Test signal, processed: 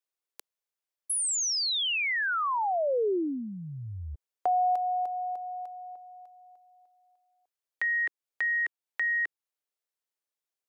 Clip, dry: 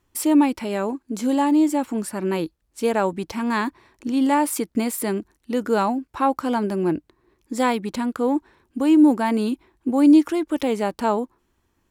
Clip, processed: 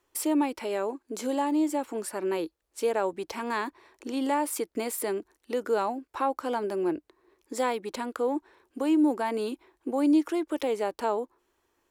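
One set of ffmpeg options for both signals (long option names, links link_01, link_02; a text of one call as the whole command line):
ffmpeg -i in.wav -filter_complex "[0:a]lowshelf=frequency=280:width_type=q:width=1.5:gain=-12,acrossover=split=250[link_01][link_02];[link_02]acompressor=threshold=-34dB:ratio=1.5[link_03];[link_01][link_03]amix=inputs=2:normalize=0,volume=-1.5dB" out.wav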